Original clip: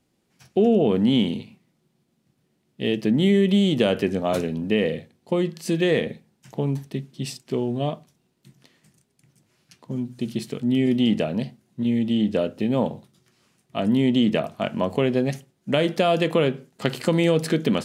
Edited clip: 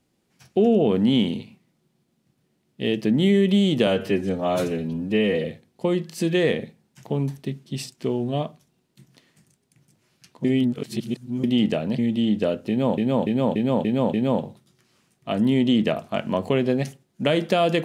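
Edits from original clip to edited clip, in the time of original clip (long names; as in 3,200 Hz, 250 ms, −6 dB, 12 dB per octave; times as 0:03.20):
0:03.87–0:04.92: time-stretch 1.5×
0:09.92–0:10.91: reverse
0:11.46–0:11.91: remove
0:12.61–0:12.90: repeat, 6 plays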